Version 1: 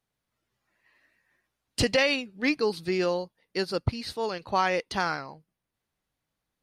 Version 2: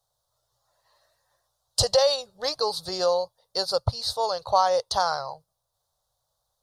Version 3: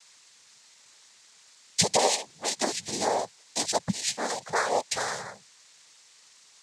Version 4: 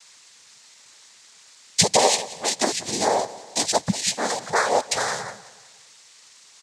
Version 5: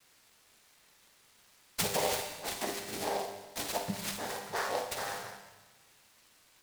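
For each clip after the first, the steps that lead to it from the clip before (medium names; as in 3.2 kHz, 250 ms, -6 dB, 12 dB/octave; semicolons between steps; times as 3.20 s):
FFT filter 120 Hz 0 dB, 270 Hz -27 dB, 560 Hz +6 dB, 830 Hz +5 dB, 1.2 kHz +2 dB, 2.4 kHz -23 dB, 3.7 kHz +5 dB, 6.3 kHz +6 dB, 13 kHz +4 dB; in parallel at 0 dB: compression, threshold -27 dBFS, peak gain reduction 11.5 dB; on the sum: trim -1.5 dB
peaking EQ 790 Hz -8.5 dB 1 oct; added noise blue -48 dBFS; noise-vocoded speech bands 6
feedback delay 183 ms, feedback 45%, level -18 dB; trim +5.5 dB
feedback comb 100 Hz, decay 1 s, harmonics all, mix 80%; on a send at -5.5 dB: reverberation RT60 1.1 s, pre-delay 47 ms; on the sum: delay time shaken by noise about 3.3 kHz, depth 0.041 ms; trim -2.5 dB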